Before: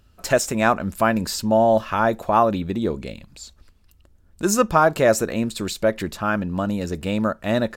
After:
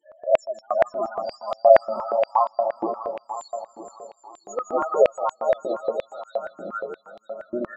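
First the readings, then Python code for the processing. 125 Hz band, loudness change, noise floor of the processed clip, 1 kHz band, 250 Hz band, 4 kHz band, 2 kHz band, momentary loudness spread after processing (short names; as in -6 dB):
under -20 dB, -2.5 dB, -60 dBFS, -2.5 dB, -15.0 dB, under -10 dB, -11.0 dB, 19 LU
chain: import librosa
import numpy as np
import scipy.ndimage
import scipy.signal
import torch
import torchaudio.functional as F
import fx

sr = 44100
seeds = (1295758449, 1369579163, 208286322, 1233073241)

p1 = fx.spec_swells(x, sr, rise_s=0.49)
p2 = fx.quant_companded(p1, sr, bits=2)
p3 = fx.spec_topn(p2, sr, count=4)
p4 = p3 + fx.echo_heads(p3, sr, ms=160, heads='first and third', feedback_pct=62, wet_db=-6.5, dry=0)
p5 = fx.filter_held_highpass(p4, sr, hz=8.5, low_hz=320.0, high_hz=3600.0)
y = p5 * 10.0 ** (-11.0 / 20.0)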